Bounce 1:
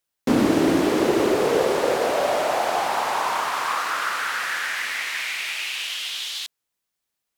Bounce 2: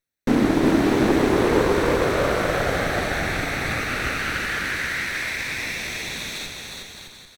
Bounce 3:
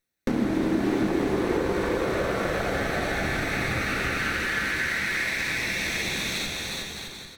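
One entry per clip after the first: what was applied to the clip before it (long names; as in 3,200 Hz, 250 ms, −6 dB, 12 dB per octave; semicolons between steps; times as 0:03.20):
lower of the sound and its delayed copy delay 0.5 ms; bass and treble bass +2 dB, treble −5 dB; on a send: bouncing-ball delay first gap 360 ms, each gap 0.7×, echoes 5
downward compressor, threshold −28 dBFS, peak gain reduction 13.5 dB; on a send at −4 dB: convolution reverb RT60 0.80 s, pre-delay 3 ms; on the sum: level +2.5 dB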